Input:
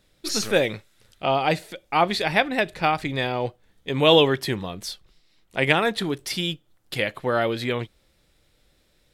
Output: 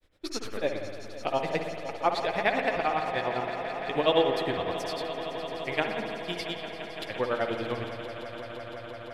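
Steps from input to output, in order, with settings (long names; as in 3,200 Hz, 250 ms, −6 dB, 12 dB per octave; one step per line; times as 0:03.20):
in parallel at +0.5 dB: downward compressor, threshold −29 dBFS, peak gain reduction 16.5 dB
on the sum: high-shelf EQ 3,200 Hz −10.5 dB
granular cloud, grains 9.9 per second, pitch spread up and down by 0 semitones
parametric band 160 Hz −9 dB 1.1 octaves
on a send: echo that builds up and dies away 170 ms, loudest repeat 5, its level −15 dB
on the sum: spring reverb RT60 1.9 s, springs 57 ms, chirp 60 ms, DRR 4.5 dB
level −4.5 dB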